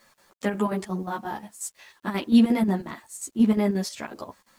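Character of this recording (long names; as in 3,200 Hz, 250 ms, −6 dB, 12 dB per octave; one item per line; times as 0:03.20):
chopped level 5.6 Hz, depth 65%, duty 70%
a quantiser's noise floor 10 bits, dither none
a shimmering, thickened sound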